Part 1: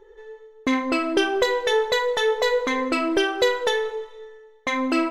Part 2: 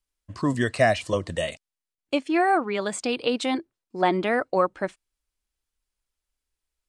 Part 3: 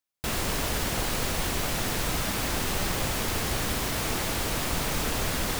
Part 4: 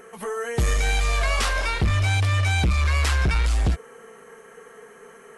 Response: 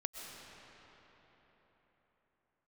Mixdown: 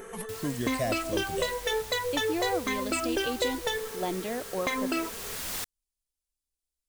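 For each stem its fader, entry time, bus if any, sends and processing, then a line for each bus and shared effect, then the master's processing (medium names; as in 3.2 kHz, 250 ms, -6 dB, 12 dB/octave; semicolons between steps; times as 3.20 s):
+2.5 dB, 0.00 s, no send, reverb removal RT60 1.7 s; compression 2.5:1, threshold -35 dBFS, peak gain reduction 12.5 dB
-7.5 dB, 0.00 s, no send, peaking EQ 1.5 kHz -11.5 dB 1.6 oct
-10.5 dB, 0.05 s, no send, tilt shelf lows -4 dB, about 650 Hz; auto duck -10 dB, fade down 0.30 s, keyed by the second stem
-12.0 dB, 0.00 s, no send, bass shelf 380 Hz +5.5 dB; peak limiter -18 dBFS, peak gain reduction 7 dB; compressor with a negative ratio -35 dBFS, ratio -1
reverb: none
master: treble shelf 4.6 kHz +7.5 dB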